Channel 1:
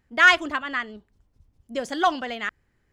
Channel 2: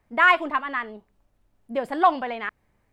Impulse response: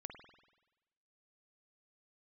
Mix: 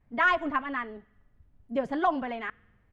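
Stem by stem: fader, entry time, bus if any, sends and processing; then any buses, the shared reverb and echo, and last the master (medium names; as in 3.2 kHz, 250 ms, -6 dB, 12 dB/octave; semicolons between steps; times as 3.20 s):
-14.0 dB, 0.00 s, send -7 dB, none
-5.0 dB, 7.5 ms, no send, low-pass that closes with the level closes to 1 kHz, closed at -14 dBFS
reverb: on, RT60 1.1 s, pre-delay 48 ms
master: tone controls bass +10 dB, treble -12 dB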